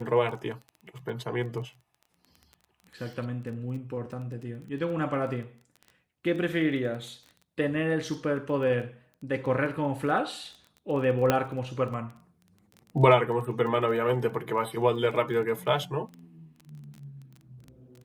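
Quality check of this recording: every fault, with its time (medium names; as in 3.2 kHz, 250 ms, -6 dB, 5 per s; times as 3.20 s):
crackle 16 per s -37 dBFS
11.30 s: pop -8 dBFS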